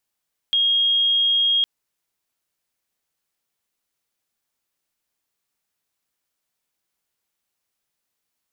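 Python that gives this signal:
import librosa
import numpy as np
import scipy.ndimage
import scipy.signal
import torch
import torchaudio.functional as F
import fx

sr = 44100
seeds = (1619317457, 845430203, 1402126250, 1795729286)

y = 10.0 ** (-15.5 / 20.0) * np.sin(2.0 * np.pi * (3260.0 * (np.arange(round(1.11 * sr)) / sr)))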